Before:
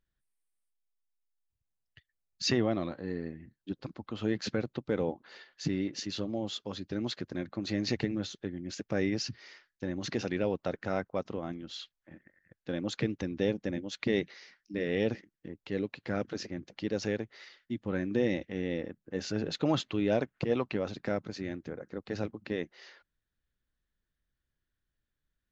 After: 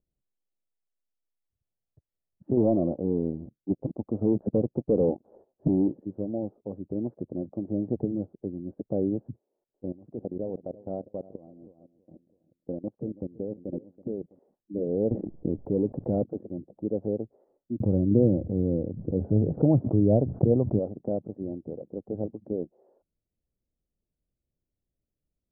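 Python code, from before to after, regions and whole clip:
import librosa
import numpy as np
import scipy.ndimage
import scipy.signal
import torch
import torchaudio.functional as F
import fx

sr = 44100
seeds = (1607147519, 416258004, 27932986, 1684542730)

y = fx.chain(x, sr, fx.peak_eq(hz=3100.0, db=-9.0, octaves=1.4),
    fx.leveller(passes=2), at=(2.57, 5.93))
y = fx.chain(y, sr, fx.echo_feedback(ms=327, feedback_pct=29, wet_db=-14.0),
    fx.level_steps(step_db=17),
    fx.tremolo(hz=5.7, depth=0.3), at=(9.36, 14.39))
y = fx.chain(y, sr, fx.low_shelf(hz=64.0, db=11.0),
    fx.leveller(passes=1),
    fx.env_flatten(amount_pct=70), at=(15.11, 16.24))
y = fx.chain(y, sr, fx.peak_eq(hz=96.0, db=14.5, octaves=1.7),
    fx.pre_swell(db_per_s=58.0), at=(17.8, 20.79))
y = scipy.signal.sosfilt(scipy.signal.butter(6, 700.0, 'lowpass', fs=sr, output='sos'), y)
y = fx.low_shelf(y, sr, hz=71.0, db=-7.0)
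y = F.gain(torch.from_numpy(y), 4.0).numpy()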